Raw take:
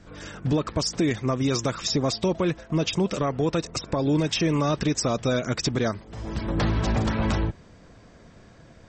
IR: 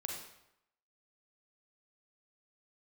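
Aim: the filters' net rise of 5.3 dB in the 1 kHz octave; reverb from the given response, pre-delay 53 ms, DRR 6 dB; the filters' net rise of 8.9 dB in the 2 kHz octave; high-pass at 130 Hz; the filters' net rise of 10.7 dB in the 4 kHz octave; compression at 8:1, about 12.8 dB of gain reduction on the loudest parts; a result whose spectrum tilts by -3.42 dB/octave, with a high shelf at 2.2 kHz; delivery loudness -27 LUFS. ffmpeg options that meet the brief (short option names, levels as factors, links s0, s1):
-filter_complex "[0:a]highpass=130,equalizer=f=1000:t=o:g=3.5,equalizer=f=2000:t=o:g=5,highshelf=f=2200:g=6.5,equalizer=f=4000:t=o:g=6,acompressor=threshold=0.0447:ratio=8,asplit=2[s0][s1];[1:a]atrim=start_sample=2205,adelay=53[s2];[s1][s2]afir=irnorm=-1:irlink=0,volume=0.501[s3];[s0][s3]amix=inputs=2:normalize=0,volume=1.41"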